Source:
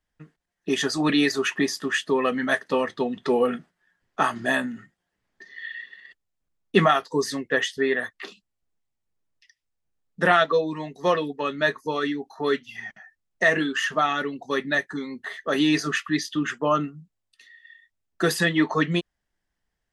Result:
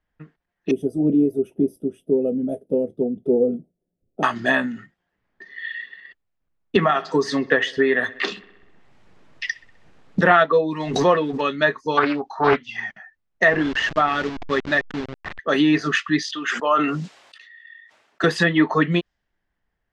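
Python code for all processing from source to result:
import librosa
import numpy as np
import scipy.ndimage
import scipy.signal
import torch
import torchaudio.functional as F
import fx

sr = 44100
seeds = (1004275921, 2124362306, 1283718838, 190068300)

y = fx.chain(x, sr, fx.cheby2_bandstop(low_hz=1000.0, high_hz=7300.0, order=4, stop_db=40),
    fx.high_shelf(hz=3300.0, db=10.5), at=(0.71, 4.23))
y = fx.chain(y, sr, fx.echo_wet_lowpass(ms=64, feedback_pct=54, hz=3200.0, wet_db=-22.0),
    fx.band_squash(depth_pct=100), at=(6.76, 10.21))
y = fx.chain(y, sr, fx.law_mismatch(coded='mu'),
    fx.pre_swell(db_per_s=66.0), at=(10.8, 11.41))
y = fx.chain(y, sr, fx.peak_eq(hz=1000.0, db=10.0, octaves=1.2),
    fx.doppler_dist(depth_ms=0.35), at=(11.97, 12.86))
y = fx.chain(y, sr, fx.delta_hold(step_db=-28.5),
    fx.air_absorb(metres=110.0), at=(13.48, 15.39))
y = fx.chain(y, sr, fx.highpass(hz=560.0, slope=12),
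    fx.sustainer(db_per_s=43.0), at=(16.22, 18.24))
y = fx.env_lowpass_down(y, sr, base_hz=2000.0, full_db=-17.5)
y = fx.high_shelf(y, sr, hz=4500.0, db=8.5)
y = fx.env_lowpass(y, sr, base_hz=2100.0, full_db=-18.5)
y = y * 10.0 ** (4.0 / 20.0)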